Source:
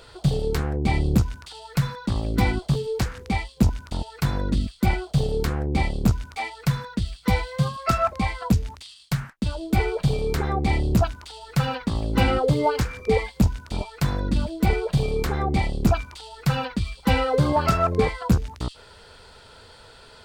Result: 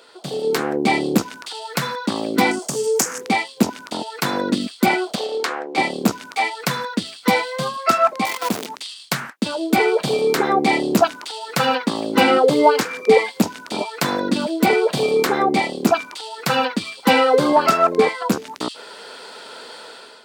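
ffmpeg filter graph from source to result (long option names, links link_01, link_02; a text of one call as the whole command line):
ffmpeg -i in.wav -filter_complex "[0:a]asettb=1/sr,asplit=3[link_01][link_02][link_03];[link_01]atrim=end=2.514[link_04];[link_02]atrim=start=2.51:end=3.21,asetpts=PTS-STARTPTS,afade=type=in:duration=0.004:curve=qsin,afade=type=out:start_time=0.696:duration=0.004:curve=qsin,acompressor=threshold=-26dB:ratio=2:attack=3.2:release=140:knee=1:detection=peak,highshelf=frequency=5000:width_type=q:width=3:gain=9,volume=17dB,asoftclip=hard,volume=-17dB[link_05];[link_03]atrim=start=3.206[link_06];[link_04][link_05]acrossfade=duration=0.004:curve1=hsin:curve2=qsin[link_07];[link_07][link_06]acrossfade=duration=0.004:curve1=qsin:curve2=hsin,asettb=1/sr,asplit=3[link_08][link_09][link_10];[link_08]atrim=end=5.154[link_11];[link_09]atrim=start=5.15:end=5.78,asetpts=PTS-STARTPTS,afade=type=in:duration=0.004:curve=qsin,afade=type=out:start_time=0.626:duration=0.004:curve=qsin,highpass=640,adynamicsmooth=sensitivity=5.5:basefreq=5600[link_12];[link_10]atrim=start=5.776[link_13];[link_11][link_12]acrossfade=duration=0.004:curve1=hsin:curve2=qsin[link_14];[link_14][link_13]acrossfade=duration=0.004:curve1=qsin:curve2=hsin,asettb=1/sr,asplit=3[link_15][link_16][link_17];[link_15]atrim=end=8.254[link_18];[link_16]atrim=start=8.25:end=8.67,asetpts=PTS-STARTPTS,afade=type=in:duration=0.004:curve=qsin,afade=type=out:start_time=0.416:duration=0.004:curve=qsin,asuperstop=centerf=1700:order=12:qfactor=4,acompressor=threshold=-24dB:ratio=2:attack=3.2:release=140:knee=1:detection=peak,acrusher=bits=6:dc=4:mix=0:aa=0.000001[link_19];[link_17]atrim=start=8.666[link_20];[link_18][link_19]acrossfade=duration=0.004:curve1=hsin:curve2=qsin[link_21];[link_21][link_20]acrossfade=duration=0.004:curve1=qsin:curve2=hsin,highpass=frequency=240:width=0.5412,highpass=frequency=240:width=1.3066,dynaudnorm=framelen=190:gausssize=5:maxgain=11.5dB" out.wav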